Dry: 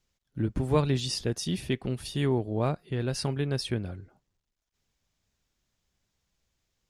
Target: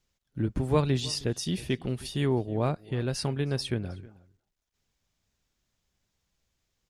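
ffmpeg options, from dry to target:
-filter_complex "[0:a]asplit=2[s0][s1];[s1]adelay=314.9,volume=0.0891,highshelf=f=4000:g=-7.08[s2];[s0][s2]amix=inputs=2:normalize=0"

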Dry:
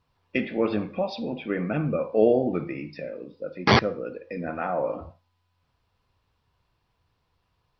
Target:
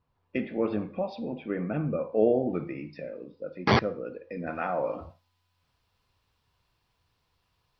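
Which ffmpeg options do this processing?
-af "asetnsamples=n=441:p=0,asendcmd='2.5 highshelf g -5;4.47 highshelf g 7.5',highshelf=f=2200:g=-10.5,volume=0.708"

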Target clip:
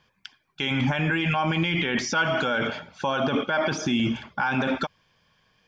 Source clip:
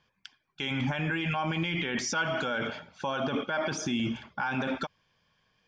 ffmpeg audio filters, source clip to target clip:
-filter_complex "[0:a]acrossover=split=5900[s0][s1];[s1]acompressor=threshold=0.00141:ratio=4:attack=1:release=60[s2];[s0][s2]amix=inputs=2:normalize=0,volume=2"

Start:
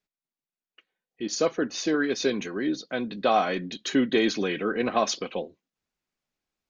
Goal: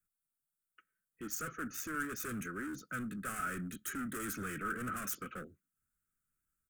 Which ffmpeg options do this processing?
-filter_complex "[0:a]acrossover=split=140|420|1200[s0][s1][s2][s3];[s0]acontrast=65[s4];[s4][s1][s2][s3]amix=inputs=4:normalize=0,volume=33.5,asoftclip=hard,volume=0.0299,firequalizer=gain_entry='entry(100,0);entry(910,-26);entry(1300,8);entry(1900,-6);entry(4100,-22);entry(8200,10)':delay=0.05:min_phase=1,volume=0.75"

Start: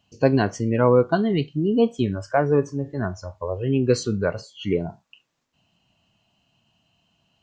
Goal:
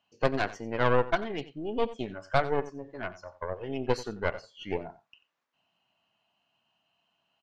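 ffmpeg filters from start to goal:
-af "bandpass=f=1300:t=q:w=0.7:csg=0,aeval=exprs='0.355*(cos(1*acos(clip(val(0)/0.355,-1,1)))-cos(1*PI/2))+0.1*(cos(4*acos(clip(val(0)/0.355,-1,1)))-cos(4*PI/2))+0.0112*(cos(8*acos(clip(val(0)/0.355,-1,1)))-cos(8*PI/2))':c=same,aecho=1:1:90:0.15,volume=0.708"

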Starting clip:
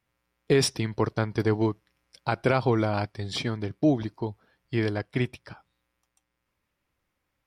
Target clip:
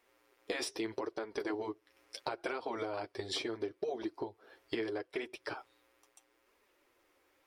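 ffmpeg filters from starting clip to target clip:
-af "afftfilt=real='re*lt(hypot(re,im),0.398)':imag='im*lt(hypot(re,im),0.398)':win_size=1024:overlap=0.75,lowshelf=f=250:t=q:w=3:g=-13,alimiter=limit=0.0891:level=0:latency=1:release=330,acompressor=threshold=0.00794:ratio=10,flanger=delay=4:depth=7.5:regen=-24:speed=0.76:shape=triangular,volume=3.55"

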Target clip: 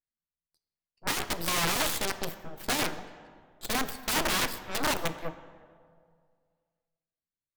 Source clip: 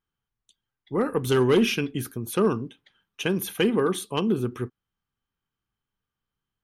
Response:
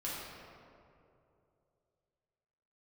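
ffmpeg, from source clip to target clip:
-filter_complex "[0:a]atempo=0.65,aeval=exprs='0.237*(cos(1*acos(clip(val(0)/0.237,-1,1)))-cos(1*PI/2))+0.0668*(cos(4*acos(clip(val(0)/0.237,-1,1)))-cos(4*PI/2))+0.0266*(cos(7*acos(clip(val(0)/0.237,-1,1)))-cos(7*PI/2))+0.0168*(cos(8*acos(clip(val(0)/0.237,-1,1)))-cos(8*PI/2))':c=same,aeval=exprs='(mod(6.31*val(0)+1,2)-1)/6.31':c=same,asplit=2[s0][s1];[1:a]atrim=start_sample=2205[s2];[s1][s2]afir=irnorm=-1:irlink=0,volume=0.251[s3];[s0][s3]amix=inputs=2:normalize=0,asetrate=59535,aresample=44100,volume=0.596"

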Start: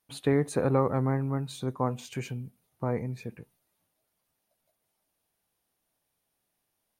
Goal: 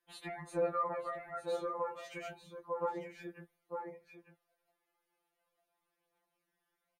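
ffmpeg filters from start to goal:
-filter_complex "[0:a]acrossover=split=290 2600:gain=0.158 1 0.224[s0][s1][s2];[s0][s1][s2]amix=inputs=3:normalize=0,aecho=1:1:901:0.316,asplit=2[s3][s4];[s4]acompressor=threshold=0.0126:ratio=6,volume=1.19[s5];[s3][s5]amix=inputs=2:normalize=0,flanger=delay=5.2:depth=3:regen=40:speed=0.3:shape=sinusoidal,acrossover=split=160|1200[s6][s7][s8];[s7]alimiter=level_in=1.68:limit=0.0631:level=0:latency=1:release=28,volume=0.596[s9];[s6][s9][s8]amix=inputs=3:normalize=0,afftfilt=real='re*2.83*eq(mod(b,8),0)':imag='im*2.83*eq(mod(b,8),0)':win_size=2048:overlap=0.75,volume=1.12"

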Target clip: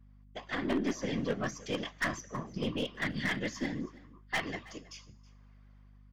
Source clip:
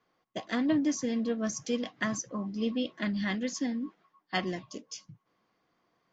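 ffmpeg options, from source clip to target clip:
-filter_complex "[0:a]equalizer=f=1900:t=o:w=2.3:g=8,bandreject=f=4200:w=22,bandreject=f=198.4:t=h:w=4,bandreject=f=396.8:t=h:w=4,bandreject=f=595.2:t=h:w=4,bandreject=f=793.6:t=h:w=4,bandreject=f=992:t=h:w=4,bandreject=f=1190.4:t=h:w=4,bandreject=f=1388.8:t=h:w=4,bandreject=f=1587.2:t=h:w=4,bandreject=f=1785.6:t=h:w=4,bandreject=f=1984:t=h:w=4,bandreject=f=2182.4:t=h:w=4,bandreject=f=2380.8:t=h:w=4,bandreject=f=2579.2:t=h:w=4,bandreject=f=2777.6:t=h:w=4,bandreject=f=2976:t=h:w=4,bandreject=f=3174.4:t=h:w=4,bandreject=f=3372.8:t=h:w=4,bandreject=f=3571.2:t=h:w=4,bandreject=f=3769.6:t=h:w=4,bandreject=f=3968:t=h:w=4,bandreject=f=4166.4:t=h:w=4,bandreject=f=4364.8:t=h:w=4,bandreject=f=4563.2:t=h:w=4,bandreject=f=4761.6:t=h:w=4,bandreject=f=4960:t=h:w=4,bandreject=f=5158.4:t=h:w=4,bandreject=f=5356.8:t=h:w=4,bandreject=f=5555.2:t=h:w=4,bandreject=f=5753.6:t=h:w=4,bandreject=f=5952:t=h:w=4,bandreject=f=6150.4:t=h:w=4,bandreject=f=6348.8:t=h:w=4,bandreject=f=6547.2:t=h:w=4,bandreject=f=6745.6:t=h:w=4,bandreject=f=6944:t=h:w=4,bandreject=f=7142.4:t=h:w=4,bandreject=f=7340.8:t=h:w=4,bandreject=f=7539.2:t=h:w=4,bandreject=f=7737.6:t=h:w=4,acrossover=split=4300[s0][s1];[s1]acompressor=threshold=0.00562:ratio=4:attack=1:release=60[s2];[s0][s2]amix=inputs=2:normalize=0,lowshelf=f=87:g=-9,dynaudnorm=f=230:g=5:m=2.82,asoftclip=type=hard:threshold=0.251,afftfilt=real='hypot(re,im)*cos(2*PI*random(0))':imag='hypot(re,im)*sin(2*PI*random(1))':win_size=512:overlap=0.75,aeval=exprs='0.316*(cos(1*acos(clip(val(0)/0.316,-1,1)))-cos(1*PI/2))+0.002*(cos(5*acos(clip(val(0)/0.316,-1,1)))-cos(5*PI/2))+0.00251*(cos(6*acos(clip(val(0)/0.316,-1,1)))-cos(6*PI/2))+0.0141*(cos(8*acos(clip(val(0)/0.316,-1,1)))-cos(8*PI/2))':c=same,aeval=exprs='0.15*(abs(mod(val(0)/0.15+3,4)-2)-1)':c=same,aeval=exprs='val(0)+0.00316*(sin(2*PI*50*n/s)+sin(2*PI*2*50*n/s)/2+sin(2*PI*3*50*n/s)/3+sin(2*PI*4*50*n/s)/4+sin(2*PI*5*50*n/s)/5)':c=same,asplit=2[s3][s4];[s4]aecho=0:1:322:0.0891[s5];[s3][s5]amix=inputs=2:normalize=0,volume=0.501"

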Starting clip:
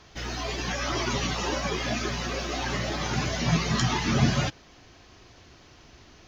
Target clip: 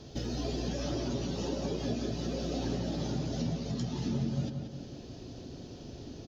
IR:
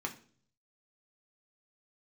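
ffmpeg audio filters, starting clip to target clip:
-filter_complex "[0:a]equalizer=f=125:t=o:w=1:g=8,equalizer=f=250:t=o:w=1:g=8,equalizer=f=500:t=o:w=1:g=8,equalizer=f=1000:t=o:w=1:g=-7,equalizer=f=2000:t=o:w=1:g=-10,equalizer=f=4000:t=o:w=1:g=4,acompressor=threshold=0.0224:ratio=6,asplit=2[s0][s1];[s1]adelay=181,lowpass=f=3500:p=1,volume=0.562,asplit=2[s2][s3];[s3]adelay=181,lowpass=f=3500:p=1,volume=0.51,asplit=2[s4][s5];[s5]adelay=181,lowpass=f=3500:p=1,volume=0.51,asplit=2[s6][s7];[s7]adelay=181,lowpass=f=3500:p=1,volume=0.51,asplit=2[s8][s9];[s9]adelay=181,lowpass=f=3500:p=1,volume=0.51,asplit=2[s10][s11];[s11]adelay=181,lowpass=f=3500:p=1,volume=0.51[s12];[s0][s2][s4][s6][s8][s10][s12]amix=inputs=7:normalize=0,asplit=2[s13][s14];[1:a]atrim=start_sample=2205,asetrate=33957,aresample=44100[s15];[s14][s15]afir=irnorm=-1:irlink=0,volume=0.299[s16];[s13][s16]amix=inputs=2:normalize=0,volume=0.75"

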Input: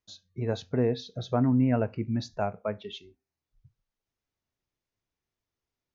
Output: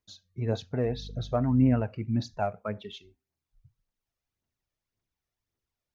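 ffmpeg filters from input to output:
-filter_complex "[0:a]asettb=1/sr,asplit=3[s0][s1][s2];[s0]atrim=end=0.854[s3];[s1]atrim=start=0.85:end=1.82,asetpts=PTS-STARTPTS,afade=t=in:d=0.004:c=qsin,afade=t=out:st=0.966:d=0.004:c=qsin,aeval=exprs='val(0)+0.00708*(sin(2*PI*50*n/s)+sin(2*PI*2*50*n/s)/2+sin(2*PI*3*50*n/s)/3+sin(2*PI*4*50*n/s)/4+sin(2*PI*5*50*n/s)/5)':c=same[s4];[s2]atrim=start=1.816[s5];[s3][s4]acrossfade=d=0.004:c1=hsin:c2=qsin[s6];[s6][s5]acrossfade=d=0.004:c1=qsin:c2=hsin,aphaser=in_gain=1:out_gain=1:delay=1.8:decay=0.46:speed=1.8:type=triangular,volume=0.794"

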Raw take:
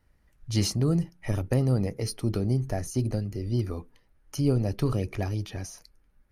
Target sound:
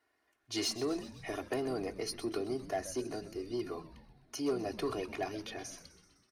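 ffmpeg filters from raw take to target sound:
-filter_complex "[0:a]highpass=430,highshelf=f=6800:g=-9,aecho=1:1:2.8:1,asoftclip=type=tanh:threshold=0.0708,asplit=8[s0][s1][s2][s3][s4][s5][s6][s7];[s1]adelay=127,afreqshift=-100,volume=0.188[s8];[s2]adelay=254,afreqshift=-200,volume=0.116[s9];[s3]adelay=381,afreqshift=-300,volume=0.0724[s10];[s4]adelay=508,afreqshift=-400,volume=0.0447[s11];[s5]adelay=635,afreqshift=-500,volume=0.0279[s12];[s6]adelay=762,afreqshift=-600,volume=0.0172[s13];[s7]adelay=889,afreqshift=-700,volume=0.0107[s14];[s0][s8][s9][s10][s11][s12][s13][s14]amix=inputs=8:normalize=0,volume=0.75"

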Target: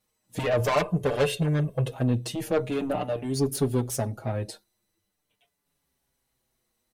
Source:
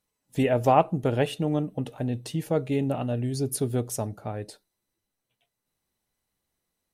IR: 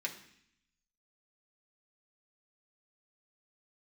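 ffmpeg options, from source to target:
-filter_complex "[0:a]acrossover=split=5300[s0][s1];[s1]asoftclip=type=hard:threshold=0.0178[s2];[s0][s2]amix=inputs=2:normalize=0,asettb=1/sr,asplit=3[s3][s4][s5];[s3]atrim=end=0.594[s6];[s4]atrim=start=0.59:end=1.91,asetpts=PTS-STARTPTS,afade=t=in:d=0.004:c=qsin,afade=t=out:st=1.316:d=0.004:c=qsin,aecho=1:1:1.9:0.93,atrim=end_sample=58212[s7];[s5]atrim=start=1.906[s8];[s6][s7]acrossfade=d=0.004:c1=hsin:c2=qsin[s9];[s9][s8]acrossfade=d=0.004:c1=qsin:c2=hsin,asoftclip=type=tanh:threshold=0.0631,asplit=2[s10][s11];[s11]adelay=5.9,afreqshift=-0.44[s12];[s10][s12]amix=inputs=2:normalize=1,volume=2.37"

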